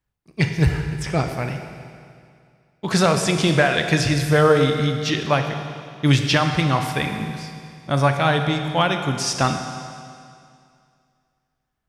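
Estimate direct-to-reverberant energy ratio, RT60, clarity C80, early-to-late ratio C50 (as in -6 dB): 5.0 dB, 2.3 s, 7.0 dB, 6.0 dB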